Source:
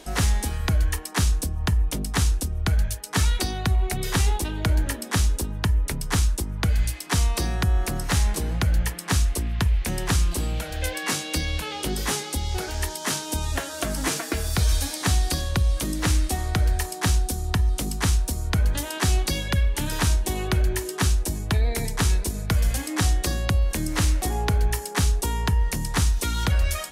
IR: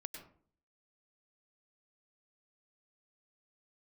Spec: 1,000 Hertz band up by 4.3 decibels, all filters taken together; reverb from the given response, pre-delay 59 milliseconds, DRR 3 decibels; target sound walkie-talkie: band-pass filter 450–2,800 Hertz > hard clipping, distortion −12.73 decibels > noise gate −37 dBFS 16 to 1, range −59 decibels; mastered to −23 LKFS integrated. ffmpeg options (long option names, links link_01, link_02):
-filter_complex "[0:a]equalizer=frequency=1000:width_type=o:gain=6,asplit=2[link_01][link_02];[1:a]atrim=start_sample=2205,adelay=59[link_03];[link_02][link_03]afir=irnorm=-1:irlink=0,volume=0.5dB[link_04];[link_01][link_04]amix=inputs=2:normalize=0,highpass=450,lowpass=2800,asoftclip=type=hard:threshold=-21.5dB,agate=range=-59dB:threshold=-37dB:ratio=16,volume=7.5dB"